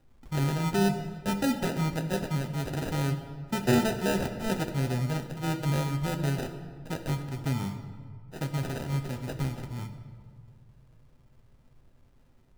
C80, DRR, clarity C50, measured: 10.5 dB, 4.5 dB, 9.0 dB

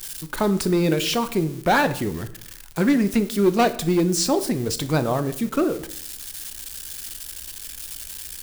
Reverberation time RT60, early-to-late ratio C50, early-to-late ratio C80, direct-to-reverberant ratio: 0.60 s, 15.0 dB, 18.0 dB, 11.0 dB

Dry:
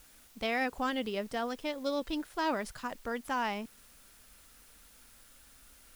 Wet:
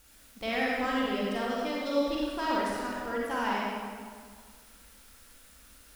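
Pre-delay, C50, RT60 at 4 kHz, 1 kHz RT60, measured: 35 ms, −3.0 dB, 1.3 s, 1.8 s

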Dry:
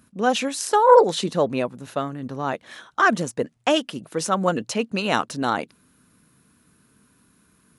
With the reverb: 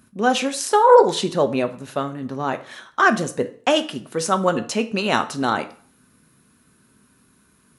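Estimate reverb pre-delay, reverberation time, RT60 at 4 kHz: 3 ms, 0.45 s, 0.40 s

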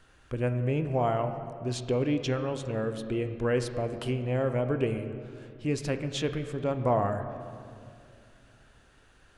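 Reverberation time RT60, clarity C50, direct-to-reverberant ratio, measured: 2.3 s, 9.0 dB, 7.5 dB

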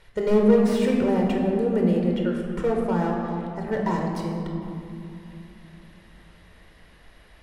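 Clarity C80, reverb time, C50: 3.0 dB, 2.9 s, 1.5 dB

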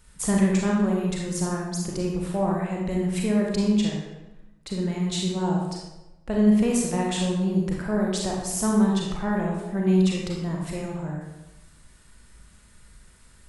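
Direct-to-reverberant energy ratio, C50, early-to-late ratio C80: −2.0 dB, 0.5 dB, 3.5 dB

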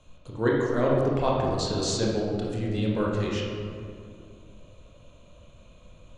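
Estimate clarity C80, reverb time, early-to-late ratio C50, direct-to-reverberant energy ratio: 1.5 dB, 2.3 s, 0.0 dB, −3.5 dB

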